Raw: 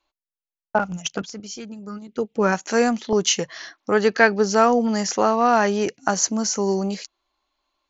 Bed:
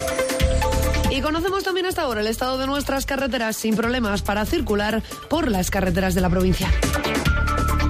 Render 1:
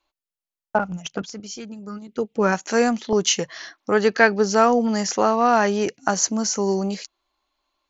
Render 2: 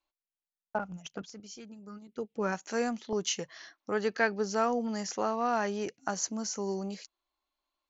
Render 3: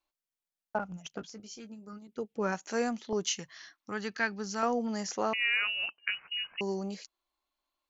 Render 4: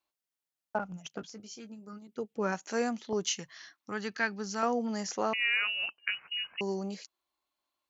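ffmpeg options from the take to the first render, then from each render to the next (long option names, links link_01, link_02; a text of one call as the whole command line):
ffmpeg -i in.wav -filter_complex "[0:a]asettb=1/sr,asplit=3[link_01][link_02][link_03];[link_01]atrim=end=0.774[link_04];[link_02]atrim=start=0.77:end=1.23,asetpts=PTS-STARTPTS,afade=type=in:duration=0.004:curve=qsin,afade=type=out:start_time=0.456:duration=0.004:curve=qsin,highshelf=frequency=2900:gain=-9[link_05];[link_03]atrim=start=1.226[link_06];[link_04][link_05]acrossfade=duration=0.004:curve1=hsin:curve2=qsin[link_07];[link_07][link_06]acrossfade=duration=0.004:curve1=qsin:curve2=hsin" out.wav
ffmpeg -i in.wav -af "volume=-12dB" out.wav
ffmpeg -i in.wav -filter_complex "[0:a]asettb=1/sr,asplit=3[link_01][link_02][link_03];[link_01]atrim=end=1.154[link_04];[link_02]atrim=start=1.15:end=1.93,asetpts=PTS-STARTPTS,afade=type=in:duration=0.004:curve=qsin,afade=type=out:start_time=0.776:duration=0.004:curve=qsin,asplit=2[link_05][link_06];[link_06]adelay=18,volume=-9.5dB[link_07];[link_05][link_07]amix=inputs=2:normalize=0,atrim=end_sample=34398[link_08];[link_03]atrim=start=1.926[link_09];[link_04][link_08]acrossfade=duration=0.004:curve1=hsin:curve2=qsin[link_10];[link_10][link_09]acrossfade=duration=0.004:curve1=qsin:curve2=hsin,asettb=1/sr,asplit=3[link_11][link_12][link_13];[link_11]atrim=end=3.304[link_14];[link_12]atrim=start=3.3:end=4.63,asetpts=PTS-STARTPTS,afade=type=in:duration=0.004:curve=qsin,afade=type=out:start_time=1.326:duration=0.004:curve=qsin,equalizer=frequency=520:width_type=o:width=1.3:gain=-11.5[link_15];[link_13]atrim=start=4.626[link_16];[link_14][link_15]acrossfade=duration=0.004:curve1=hsin:curve2=qsin[link_17];[link_17][link_16]acrossfade=duration=0.004:curve1=qsin:curve2=hsin,asettb=1/sr,asplit=3[link_18][link_19][link_20];[link_18]atrim=end=5.334[link_21];[link_19]atrim=start=5.33:end=6.61,asetpts=PTS-STARTPTS,afade=type=in:duration=0.004:curve=qsin,afade=type=out:start_time=1.276:duration=0.004:curve=qsin,lowpass=frequency=2600:width_type=q:width=0.5098,lowpass=frequency=2600:width_type=q:width=0.6013,lowpass=frequency=2600:width_type=q:width=0.9,lowpass=frequency=2600:width_type=q:width=2.563,afreqshift=-3100[link_22];[link_20]atrim=start=6.606[link_23];[link_21][link_22]acrossfade=duration=0.004:curve1=hsin:curve2=qsin[link_24];[link_24][link_23]acrossfade=duration=0.004:curve1=qsin:curve2=hsin" out.wav
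ffmpeg -i in.wav -af "highpass=70" out.wav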